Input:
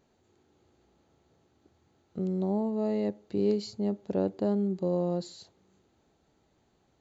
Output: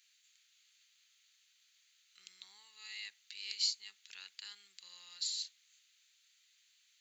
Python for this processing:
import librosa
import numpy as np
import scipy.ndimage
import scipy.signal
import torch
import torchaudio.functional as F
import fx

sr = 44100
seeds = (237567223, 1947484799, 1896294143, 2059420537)

y = scipy.signal.sosfilt(scipy.signal.cheby2(4, 60, 670.0, 'highpass', fs=sr, output='sos'), x)
y = y * 10.0 ** (10.5 / 20.0)